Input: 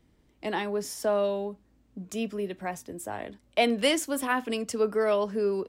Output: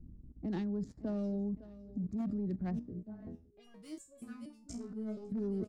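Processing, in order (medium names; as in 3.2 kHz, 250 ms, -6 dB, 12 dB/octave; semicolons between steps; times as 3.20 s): local Wiener filter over 15 samples; FFT filter 240 Hz 0 dB, 460 Hz -17 dB, 830 Hz -22 dB, 3.1 kHz -20 dB, 4.7 kHz -10 dB; level-controlled noise filter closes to 910 Hz, open at -30.5 dBFS; band-stop 990 Hz, Q 12; feedback delay 558 ms, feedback 44%, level -17 dB; saturation -26.5 dBFS, distortion -18 dB; bass shelf 66 Hz +9.5 dB; wavefolder -29.5 dBFS; level held to a coarse grid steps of 16 dB; 2.79–5.32 s: resonator arpeggio 4.2 Hz 60–560 Hz; trim +13 dB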